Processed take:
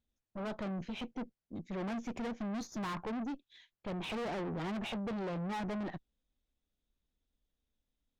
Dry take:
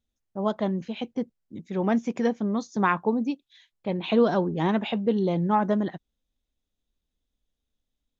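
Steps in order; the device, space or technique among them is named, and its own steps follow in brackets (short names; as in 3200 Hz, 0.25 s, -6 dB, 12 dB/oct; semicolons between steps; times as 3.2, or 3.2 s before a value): 2.4–2.93 tone controls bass +4 dB, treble +5 dB; tube preamp driven hard (tube stage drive 36 dB, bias 0.5; high shelf 5700 Hz -9 dB)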